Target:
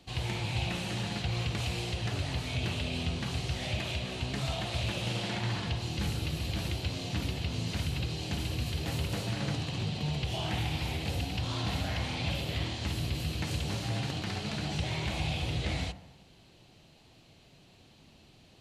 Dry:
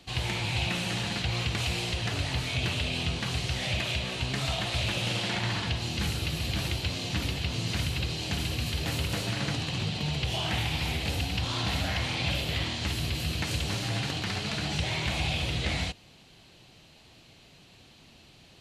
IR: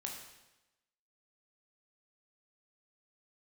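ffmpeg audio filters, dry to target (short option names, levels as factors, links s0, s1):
-filter_complex "[0:a]asplit=2[s0][s1];[s1]lowpass=1100[s2];[1:a]atrim=start_sample=2205[s3];[s2][s3]afir=irnorm=-1:irlink=0,volume=0.794[s4];[s0][s4]amix=inputs=2:normalize=0,volume=0.531"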